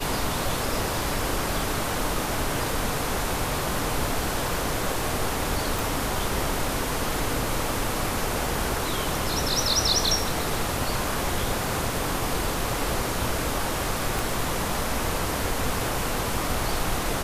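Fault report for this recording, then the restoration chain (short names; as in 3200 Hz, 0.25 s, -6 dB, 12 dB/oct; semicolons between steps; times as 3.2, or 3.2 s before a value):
5.79 pop
14.19 pop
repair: de-click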